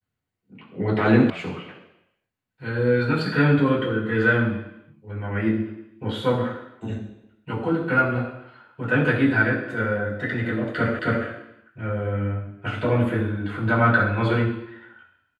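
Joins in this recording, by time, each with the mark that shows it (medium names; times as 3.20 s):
1.30 s: sound stops dead
10.99 s: repeat of the last 0.27 s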